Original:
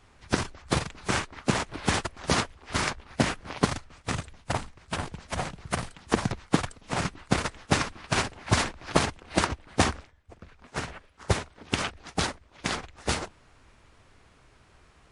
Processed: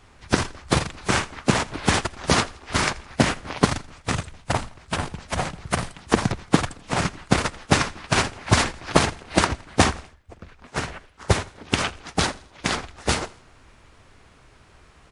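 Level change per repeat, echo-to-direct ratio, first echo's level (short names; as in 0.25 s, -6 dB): -7.5 dB, -20.0 dB, -21.0 dB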